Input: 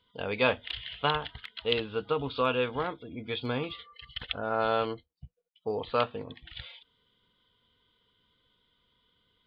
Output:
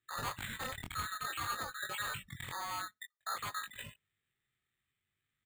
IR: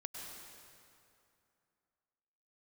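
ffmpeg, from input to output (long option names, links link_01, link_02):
-filter_complex "[0:a]afftfilt=real='real(if(lt(b,920),b+92*(1-2*mod(floor(b/92),2)),b),0)':imag='imag(if(lt(b,920),b+92*(1-2*mod(floor(b/92),2)),b),0)':win_size=2048:overlap=0.75,aeval=exprs='0.0794*(abs(mod(val(0)/0.0794+3,4)-2)-1)':channel_layout=same,equalizer=frequency=62:width_type=o:width=0.75:gain=6,asplit=2[link_01][link_02];[link_02]adelay=109,lowpass=frequency=1700:poles=1,volume=-23.5dB,asplit=2[link_03][link_04];[link_04]adelay=109,lowpass=frequency=1700:poles=1,volume=0.35[link_05];[link_01][link_03][link_05]amix=inputs=3:normalize=0,afftdn=noise_reduction=17:noise_floor=-42,lowshelf=frequency=120:gain=11.5,acompressor=threshold=-30dB:ratio=8,alimiter=level_in=6dB:limit=-24dB:level=0:latency=1:release=75,volume=-6dB,asetrate=76440,aresample=44100,flanger=delay=19:depth=4.7:speed=0.54,aresample=11025,aresample=44100,acrusher=samples=8:mix=1:aa=0.000001,volume=3.5dB"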